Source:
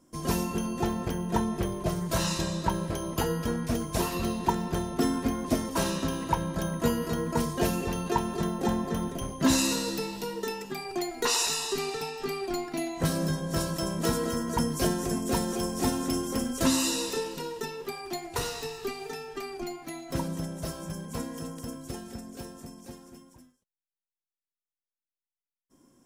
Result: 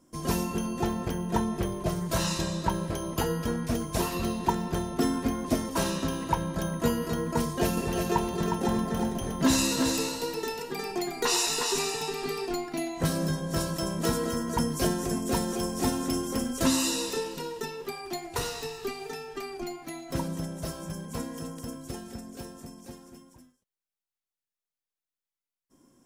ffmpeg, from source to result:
-filter_complex "[0:a]asettb=1/sr,asplit=3[s0][s1][s2];[s0]atrim=end=7.414[s3];[s1]atrim=start=7.41:end=12.54,asetpts=PTS-STARTPTS,afade=t=in:d=0.004:c=qsin,afade=t=out:st=5.126:d=0.004:c=qsin,aecho=1:1:360:0.562,atrim=end_sample=226233[s4];[s2]atrim=start=12.536[s5];[s3][s4]acrossfade=d=0.004:c1=hsin:c2=qsin[s6];[s6][s5]acrossfade=d=0.004:c1=qsin:c2=hsin"

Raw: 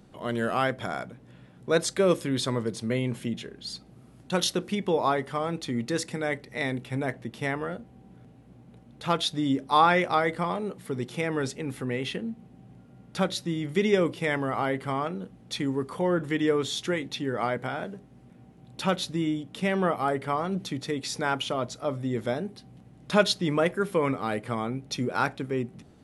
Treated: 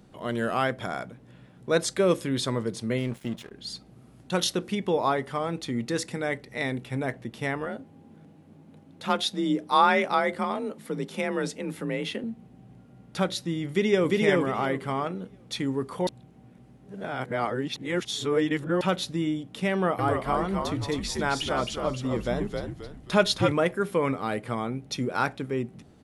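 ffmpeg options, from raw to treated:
-filter_complex "[0:a]asettb=1/sr,asplit=3[s0][s1][s2];[s0]atrim=end=2.984[s3];[s1]atrim=start=2.98:end=3.51,asetpts=PTS-STARTPTS,afade=t=in:d=0.004:c=qsin,afade=t=out:st=0.526:d=0.004:c=qsin,aeval=exprs='sgn(val(0))*max(abs(val(0))-0.00668,0)':c=same[s4];[s2]atrim=start=3.506[s5];[s3][s4]acrossfade=d=0.004:c1=hsin:c2=qsin[s6];[s6][s5]acrossfade=d=0.004:c1=qsin:c2=hsin,asettb=1/sr,asplit=3[s7][s8][s9];[s7]atrim=end=7.664[s10];[s8]atrim=start=7.66:end=12.24,asetpts=PTS-STARTPTS,afade=t=in:d=0.004:c=qsin,afade=t=out:st=4.576:d=0.004:c=qsin,afreqshift=36[s11];[s9]atrim=start=12.236[s12];[s10][s11]acrossfade=d=0.004:c1=hsin:c2=qsin[s13];[s13][s12]acrossfade=d=0.004:c1=qsin:c2=hsin,asplit=2[s14][s15];[s15]afade=t=in:st=13.68:d=0.01,afade=t=out:st=14.11:d=0.01,aecho=0:1:350|700|1050|1400:0.944061|0.236015|0.0590038|0.014751[s16];[s14][s16]amix=inputs=2:normalize=0,asettb=1/sr,asplit=3[s17][s18][s19];[s17]atrim=end=19.724[s20];[s18]atrim=start=19.72:end=23.52,asetpts=PTS-STARTPTS,afade=t=in:d=0.004:c=qsin,afade=t=out:st=3.796:d=0.004:c=qsin,asplit=5[s21][s22][s23][s24][s25];[s22]adelay=265,afreqshift=-77,volume=0.631[s26];[s23]adelay=530,afreqshift=-154,volume=0.221[s27];[s24]adelay=795,afreqshift=-231,volume=0.0776[s28];[s25]adelay=1060,afreqshift=-308,volume=0.0269[s29];[s21][s26][s27][s28][s29]amix=inputs=5:normalize=0,atrim=end_sample=167580[s30];[s19]atrim=start=23.516[s31];[s20][s30]acrossfade=d=0.004:c1=hsin:c2=qsin[s32];[s32][s31]acrossfade=d=0.004:c1=qsin:c2=hsin,asplit=3[s33][s34][s35];[s33]atrim=end=16.072[s36];[s34]atrim=start=16.068:end=18.812,asetpts=PTS-STARTPTS,areverse[s37];[s35]atrim=start=18.808[s38];[s36][s37]acrossfade=d=0.004:c1=hsin:c2=hsin[s39];[s39][s38]acrossfade=d=0.004:c1=hsin:c2=hsin"

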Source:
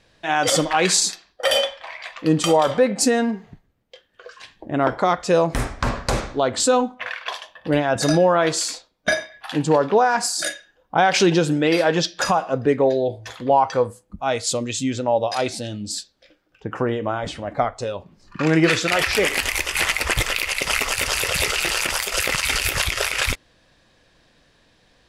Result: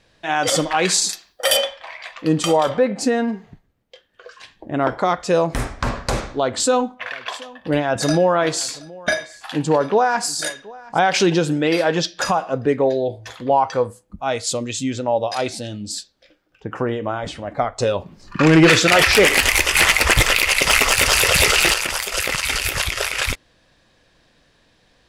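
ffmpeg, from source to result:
-filter_complex "[0:a]asettb=1/sr,asplit=3[s0][s1][s2];[s0]atrim=end=1.094[s3];[s1]atrim=start=1.09:end=1.57,asetpts=PTS-STARTPTS,afade=t=in:d=0.004:c=qsin,afade=t=out:st=0.476:d=0.004:c=qsin,aemphasis=mode=production:type=50fm[s4];[s2]atrim=start=1.566[s5];[s3][s4]acrossfade=d=0.004:c1=hsin:c2=qsin[s6];[s6][s5]acrossfade=d=0.004:c1=qsin:c2=hsin,asettb=1/sr,asplit=3[s7][s8][s9];[s7]atrim=end=2.694[s10];[s8]atrim=start=2.69:end=3.28,asetpts=PTS-STARTPTS,afade=t=in:d=0.004:c=qsin,afade=t=out:st=0.586:d=0.004:c=qsin,aemphasis=mode=reproduction:type=50kf[s11];[s9]atrim=start=3.276[s12];[s10][s11]acrossfade=d=0.004:c1=hsin:c2=qsin[s13];[s13][s12]acrossfade=d=0.004:c1=qsin:c2=hsin,asettb=1/sr,asplit=3[s14][s15][s16];[s14]atrim=end=6.394[s17];[s15]atrim=start=6.39:end=10.99,asetpts=PTS-STARTPTS,afade=t=in:d=0.004:c=qsin,afade=t=out:st=4.596:d=0.004:c=qsin,aecho=1:1:725:0.0841,atrim=end_sample=202860[s18];[s16]atrim=start=10.986[s19];[s17][s18]acrossfade=d=0.004:c1=hsin:c2=qsin[s20];[s20][s19]acrossfade=d=0.004:c1=qsin:c2=hsin,asettb=1/sr,asplit=3[s21][s22][s23];[s21]atrim=end=17.784[s24];[s22]atrim=start=17.78:end=21.74,asetpts=PTS-STARTPTS,afade=t=in:d=0.004:c=qsin,afade=t=out:st=3.956:d=0.004:c=qsin,aeval=exprs='0.501*sin(PI/2*1.58*val(0)/0.501)':c=same[s25];[s23]atrim=start=21.736[s26];[s24][s25]acrossfade=d=0.004:c1=hsin:c2=qsin[s27];[s27][s26]acrossfade=d=0.004:c1=qsin:c2=hsin"

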